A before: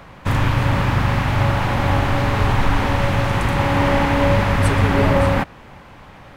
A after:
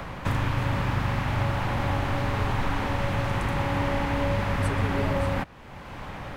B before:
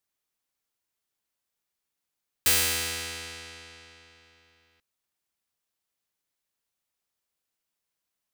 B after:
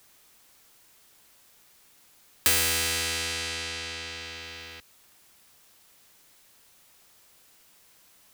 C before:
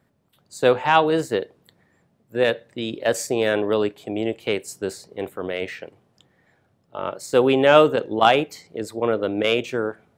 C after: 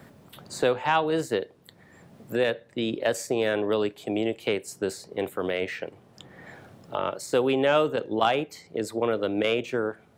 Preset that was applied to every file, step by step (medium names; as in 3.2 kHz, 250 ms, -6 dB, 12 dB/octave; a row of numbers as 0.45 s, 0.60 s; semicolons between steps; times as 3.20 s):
three bands compressed up and down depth 70%; normalise loudness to -27 LUFS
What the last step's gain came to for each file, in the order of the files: -9.0 dB, +5.0 dB, -4.5 dB